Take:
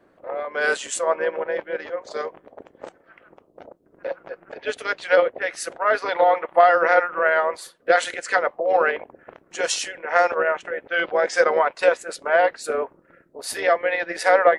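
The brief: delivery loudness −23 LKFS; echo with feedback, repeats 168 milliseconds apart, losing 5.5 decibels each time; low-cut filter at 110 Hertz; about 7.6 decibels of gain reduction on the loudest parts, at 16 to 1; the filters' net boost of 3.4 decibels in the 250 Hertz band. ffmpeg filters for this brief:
ffmpeg -i in.wav -af "highpass=110,equalizer=frequency=250:width_type=o:gain=5.5,acompressor=threshold=-17dB:ratio=16,aecho=1:1:168|336|504|672|840|1008|1176:0.531|0.281|0.149|0.079|0.0419|0.0222|0.0118,volume=0.5dB" out.wav

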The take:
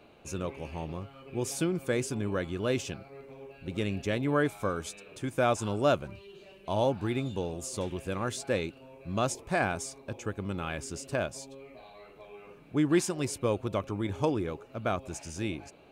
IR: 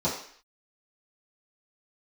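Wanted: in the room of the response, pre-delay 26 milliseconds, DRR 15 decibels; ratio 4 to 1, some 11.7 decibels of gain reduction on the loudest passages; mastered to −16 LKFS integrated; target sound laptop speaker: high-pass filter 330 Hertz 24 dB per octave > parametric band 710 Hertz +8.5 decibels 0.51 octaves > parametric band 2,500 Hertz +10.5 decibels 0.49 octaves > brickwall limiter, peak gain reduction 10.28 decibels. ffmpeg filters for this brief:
-filter_complex "[0:a]acompressor=threshold=-35dB:ratio=4,asplit=2[link_01][link_02];[1:a]atrim=start_sample=2205,adelay=26[link_03];[link_02][link_03]afir=irnorm=-1:irlink=0,volume=-25.5dB[link_04];[link_01][link_04]amix=inputs=2:normalize=0,highpass=frequency=330:width=0.5412,highpass=frequency=330:width=1.3066,equalizer=frequency=710:width_type=o:width=0.51:gain=8.5,equalizer=frequency=2500:width_type=o:width=0.49:gain=10.5,volume=26dB,alimiter=limit=-4.5dB:level=0:latency=1"

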